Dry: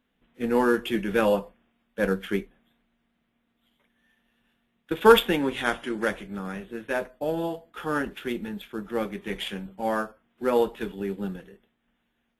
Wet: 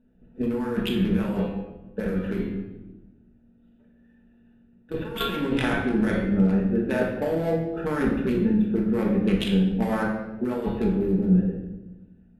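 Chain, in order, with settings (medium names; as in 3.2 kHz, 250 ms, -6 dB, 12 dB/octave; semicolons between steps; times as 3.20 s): local Wiener filter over 41 samples; peaking EQ 84 Hz +6 dB 0.86 oct; de-hum 138.5 Hz, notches 32; compressor with a negative ratio -33 dBFS, ratio -1; simulated room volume 450 m³, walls mixed, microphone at 1.5 m; trim +4 dB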